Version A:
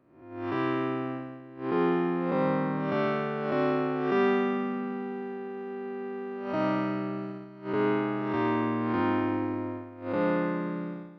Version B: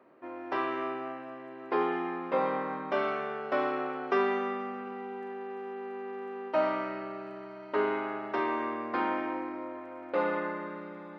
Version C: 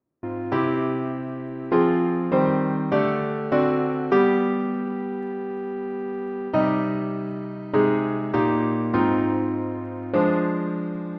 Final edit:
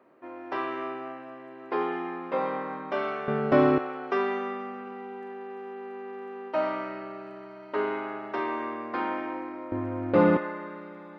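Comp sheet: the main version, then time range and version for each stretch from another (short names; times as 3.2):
B
3.28–3.78 from C
9.72–10.37 from C
not used: A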